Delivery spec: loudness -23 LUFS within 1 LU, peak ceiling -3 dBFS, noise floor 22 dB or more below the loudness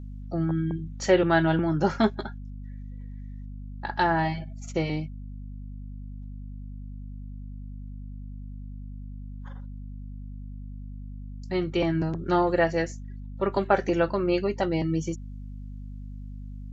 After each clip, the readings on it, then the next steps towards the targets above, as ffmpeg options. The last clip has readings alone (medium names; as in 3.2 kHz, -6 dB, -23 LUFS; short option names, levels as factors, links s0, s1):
hum 50 Hz; highest harmonic 250 Hz; hum level -36 dBFS; loudness -26.5 LUFS; peak level -7.0 dBFS; loudness target -23.0 LUFS
-> -af "bandreject=f=50:t=h:w=4,bandreject=f=100:t=h:w=4,bandreject=f=150:t=h:w=4,bandreject=f=200:t=h:w=4,bandreject=f=250:t=h:w=4"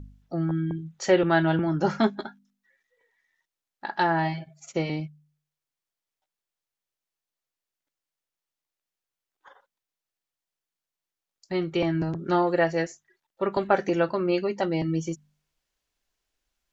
hum not found; loudness -26.0 LUFS; peak level -7.0 dBFS; loudness target -23.0 LUFS
-> -af "volume=1.41"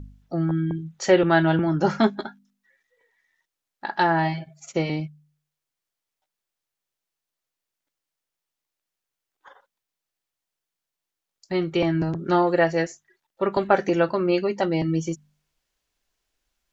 loudness -23.0 LUFS; peak level -4.0 dBFS; noise floor -86 dBFS